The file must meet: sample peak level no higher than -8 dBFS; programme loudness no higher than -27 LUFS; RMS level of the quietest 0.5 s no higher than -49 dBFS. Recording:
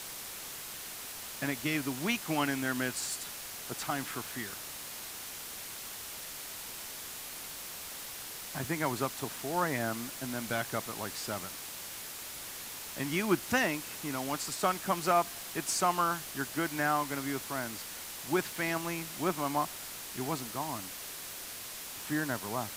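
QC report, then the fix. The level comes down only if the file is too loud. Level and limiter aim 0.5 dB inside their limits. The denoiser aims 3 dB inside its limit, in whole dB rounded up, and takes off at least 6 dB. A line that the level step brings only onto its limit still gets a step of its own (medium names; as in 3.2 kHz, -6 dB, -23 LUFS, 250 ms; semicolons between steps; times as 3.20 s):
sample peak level -13.5 dBFS: pass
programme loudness -34.5 LUFS: pass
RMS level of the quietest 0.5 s -43 dBFS: fail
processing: noise reduction 9 dB, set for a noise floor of -43 dBFS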